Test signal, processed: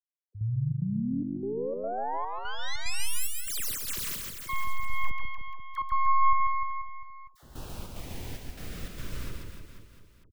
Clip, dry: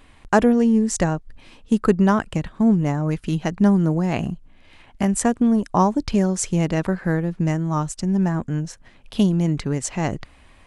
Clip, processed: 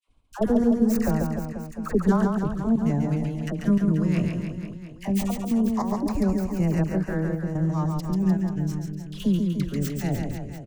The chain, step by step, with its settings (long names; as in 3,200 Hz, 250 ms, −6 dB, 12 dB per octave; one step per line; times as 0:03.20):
stylus tracing distortion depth 0.33 ms
downward expander −40 dBFS
low-shelf EQ 150 Hz +8.5 dB
auto-filter notch sine 0.19 Hz 770–3,500 Hz
all-pass dispersion lows, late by 74 ms, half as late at 840 Hz
gate pattern "xx..xxx.xx" 147 BPM −12 dB
reverse bouncing-ball delay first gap 140 ms, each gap 1.15×, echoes 5
level −7 dB